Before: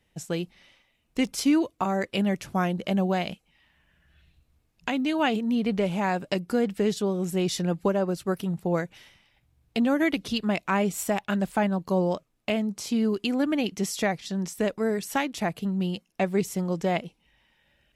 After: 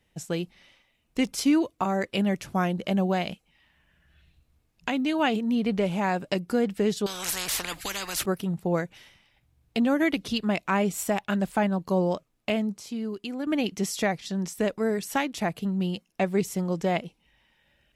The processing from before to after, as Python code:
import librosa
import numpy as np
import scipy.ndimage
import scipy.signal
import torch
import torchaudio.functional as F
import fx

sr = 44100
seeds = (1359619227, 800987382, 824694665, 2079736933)

y = fx.spectral_comp(x, sr, ratio=10.0, at=(7.06, 8.26))
y = fx.edit(y, sr, fx.clip_gain(start_s=12.77, length_s=0.7, db=-7.5), tone=tone)